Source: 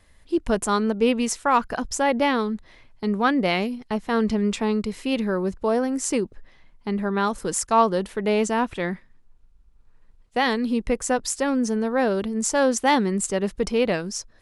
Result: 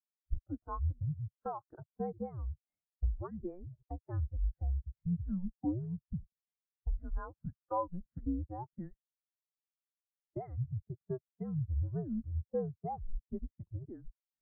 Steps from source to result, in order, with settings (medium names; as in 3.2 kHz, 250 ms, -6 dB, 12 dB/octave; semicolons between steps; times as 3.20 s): formant shift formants +4 st; compression 10:1, threshold -34 dBFS, peak gain reduction 21 dB; mistuned SSB -360 Hz 330–2100 Hz; spectral contrast expander 2.5:1; trim +2.5 dB